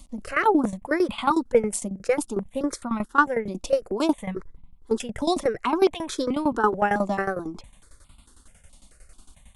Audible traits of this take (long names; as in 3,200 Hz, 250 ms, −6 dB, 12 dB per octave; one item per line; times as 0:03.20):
tremolo saw down 11 Hz, depth 85%
notches that jump at a steady rate 4.6 Hz 420–1,700 Hz